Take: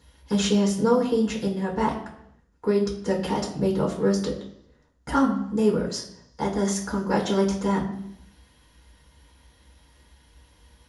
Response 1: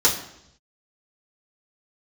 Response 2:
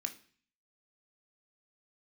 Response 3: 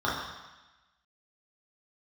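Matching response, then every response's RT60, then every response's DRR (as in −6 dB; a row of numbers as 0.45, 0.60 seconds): 1; 0.75, 0.45, 1.1 seconds; −7.0, 4.0, −7.5 decibels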